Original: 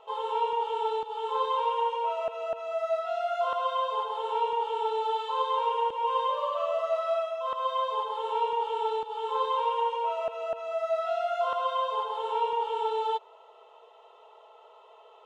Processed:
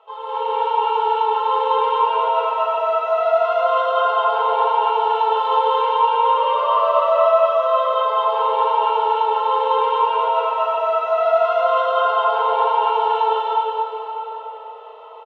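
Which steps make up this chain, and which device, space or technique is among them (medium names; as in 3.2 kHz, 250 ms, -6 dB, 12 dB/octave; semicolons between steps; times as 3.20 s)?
station announcement (band-pass 420–3800 Hz; peaking EQ 1.3 kHz +5 dB 0.45 oct; loudspeakers at several distances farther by 73 m 0 dB, 85 m -1 dB; reverberation RT60 4.3 s, pre-delay 103 ms, DRR -6 dB)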